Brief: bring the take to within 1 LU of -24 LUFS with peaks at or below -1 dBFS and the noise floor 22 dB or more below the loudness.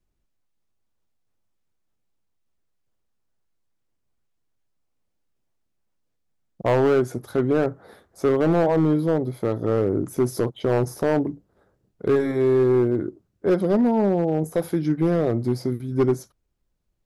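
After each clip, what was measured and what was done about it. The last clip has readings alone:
clipped 1.3%; flat tops at -13.5 dBFS; loudness -22.5 LUFS; peak -13.5 dBFS; loudness target -24.0 LUFS
-> clip repair -13.5 dBFS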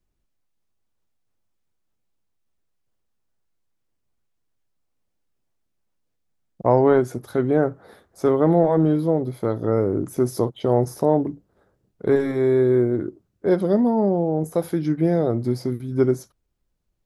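clipped 0.0%; loudness -21.0 LUFS; peak -4.5 dBFS; loudness target -24.0 LUFS
-> gain -3 dB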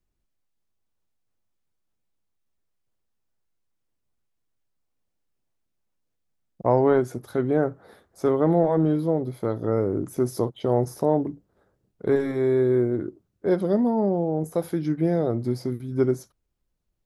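loudness -24.0 LUFS; peak -7.5 dBFS; noise floor -77 dBFS

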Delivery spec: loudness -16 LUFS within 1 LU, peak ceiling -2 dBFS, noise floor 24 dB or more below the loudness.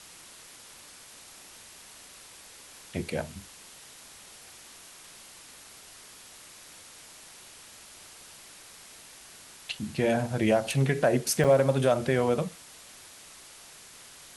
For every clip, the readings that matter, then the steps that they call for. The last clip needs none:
dropouts 1; longest dropout 5.6 ms; noise floor -50 dBFS; noise floor target -51 dBFS; loudness -26.5 LUFS; peak -10.5 dBFS; loudness target -16.0 LUFS
-> interpolate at 11.44, 5.6 ms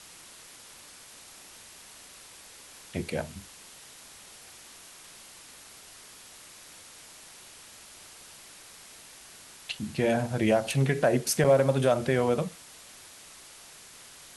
dropouts 0; noise floor -50 dBFS; noise floor target -51 dBFS
-> denoiser 6 dB, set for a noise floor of -50 dBFS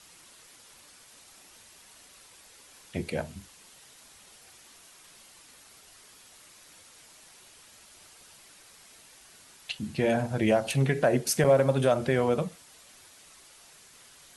noise floor -55 dBFS; loudness -26.5 LUFS; peak -10.5 dBFS; loudness target -16.0 LUFS
-> gain +10.5 dB; limiter -2 dBFS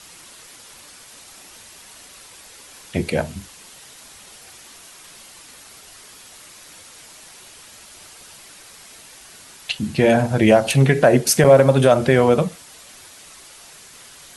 loudness -16.5 LUFS; peak -2.0 dBFS; noise floor -44 dBFS

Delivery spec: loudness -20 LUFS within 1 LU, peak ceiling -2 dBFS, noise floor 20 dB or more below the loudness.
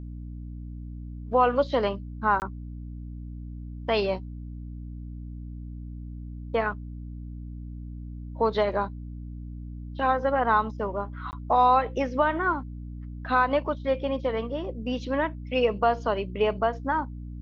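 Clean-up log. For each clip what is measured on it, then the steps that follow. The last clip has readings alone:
dropouts 2; longest dropout 19 ms; hum 60 Hz; harmonics up to 300 Hz; hum level -35 dBFS; loudness -26.5 LUFS; peak -9.5 dBFS; loudness target -20.0 LUFS
-> interpolate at 2.4/11.31, 19 ms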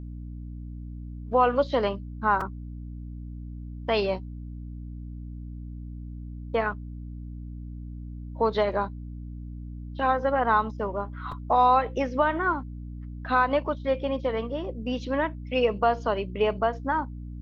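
dropouts 0; hum 60 Hz; harmonics up to 300 Hz; hum level -35 dBFS
-> notches 60/120/180/240/300 Hz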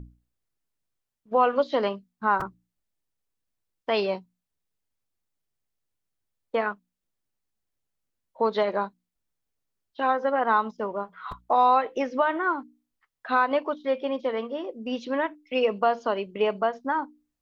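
hum none; loudness -26.5 LUFS; peak -10.0 dBFS; loudness target -20.0 LUFS
-> gain +6.5 dB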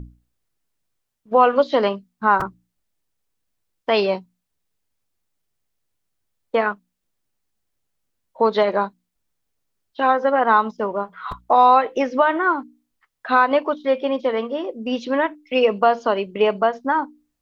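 loudness -20.0 LUFS; peak -3.5 dBFS; noise floor -77 dBFS

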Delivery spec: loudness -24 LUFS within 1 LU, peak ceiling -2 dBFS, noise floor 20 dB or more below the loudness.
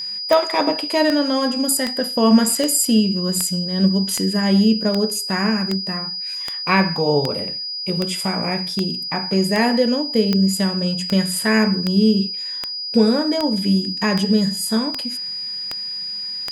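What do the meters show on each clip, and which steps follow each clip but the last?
clicks 22; steady tone 4900 Hz; tone level -25 dBFS; loudness -19.0 LUFS; peak -2.5 dBFS; loudness target -24.0 LUFS
-> de-click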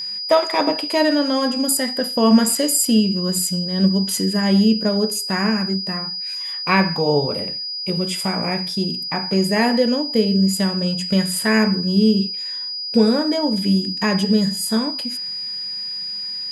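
clicks 0; steady tone 4900 Hz; tone level -25 dBFS
-> notch 4900 Hz, Q 30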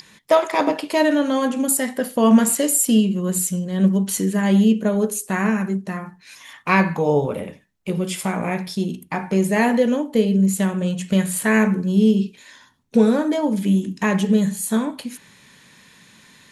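steady tone none; loudness -19.5 LUFS; peak -3.0 dBFS; loudness target -24.0 LUFS
-> gain -4.5 dB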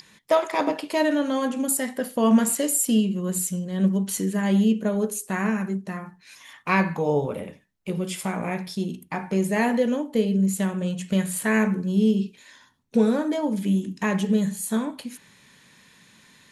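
loudness -24.0 LUFS; peak -7.5 dBFS; noise floor -56 dBFS

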